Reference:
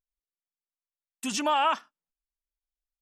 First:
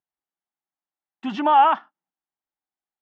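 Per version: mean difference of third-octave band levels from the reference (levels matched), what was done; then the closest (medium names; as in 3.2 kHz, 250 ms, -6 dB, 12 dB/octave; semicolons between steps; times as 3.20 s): 7.0 dB: cabinet simulation 170–2900 Hz, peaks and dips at 180 Hz +4 dB, 330 Hz +4 dB, 490 Hz -8 dB, 800 Hz +9 dB, 2.5 kHz -9 dB; trim +5 dB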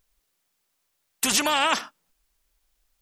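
9.5 dB: spectrum-flattening compressor 2:1; trim +6 dB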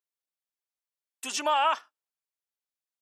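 2.0 dB: high-pass 370 Hz 24 dB/octave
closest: third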